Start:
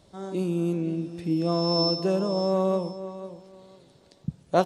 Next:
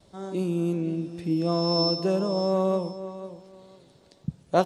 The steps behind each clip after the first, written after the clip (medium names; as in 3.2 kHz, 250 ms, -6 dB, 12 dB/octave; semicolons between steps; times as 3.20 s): gate with hold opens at -51 dBFS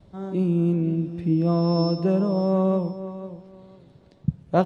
tone controls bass +9 dB, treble -13 dB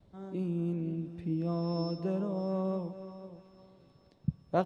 harmonic-percussive split harmonic -4 dB; thinning echo 436 ms, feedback 73%, high-pass 990 Hz, level -16 dB; trim -7.5 dB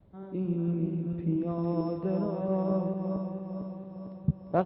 backward echo that repeats 226 ms, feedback 74%, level -5.5 dB; distance through air 400 m; Chebyshev shaper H 5 -30 dB, 6 -29 dB, 7 -29 dB, 8 -31 dB, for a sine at -12.5 dBFS; trim +3.5 dB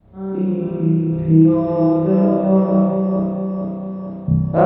spring tank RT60 1 s, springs 31 ms, chirp 40 ms, DRR -8.5 dB; trim +4.5 dB